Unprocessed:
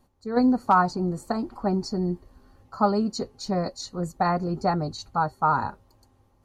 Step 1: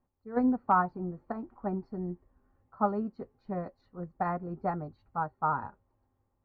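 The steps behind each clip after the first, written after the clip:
low-pass filter 2,200 Hz 24 dB per octave
expander for the loud parts 1.5 to 1, over −34 dBFS
level −5 dB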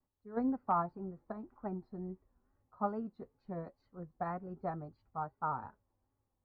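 tape wow and flutter 99 cents
level −7 dB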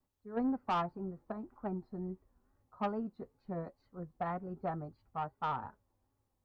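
soft clipping −29 dBFS, distortion −13 dB
level +2.5 dB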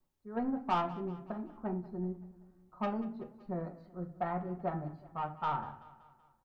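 repeating echo 190 ms, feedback 53%, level −18 dB
on a send at −4 dB: convolution reverb RT60 0.35 s, pre-delay 3 ms

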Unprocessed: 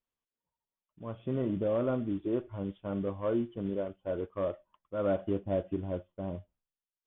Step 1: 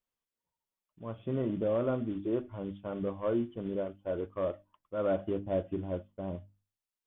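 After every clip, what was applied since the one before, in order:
mains-hum notches 50/100/150/200/250/300 Hz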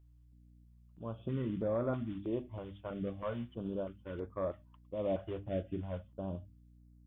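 dynamic equaliser 410 Hz, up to −5 dB, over −41 dBFS, Q 0.86
mains hum 60 Hz, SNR 22 dB
notch on a step sequencer 3.1 Hz 230–2,900 Hz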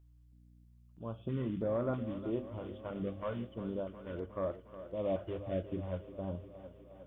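feedback echo with a high-pass in the loop 360 ms, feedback 71%, high-pass 170 Hz, level −12.5 dB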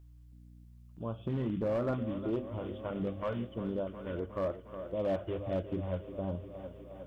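in parallel at −1 dB: downward compressor, threshold −45 dBFS, peak gain reduction 14.5 dB
on the sum: gain into a clipping stage and back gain 27.5 dB
level +1 dB

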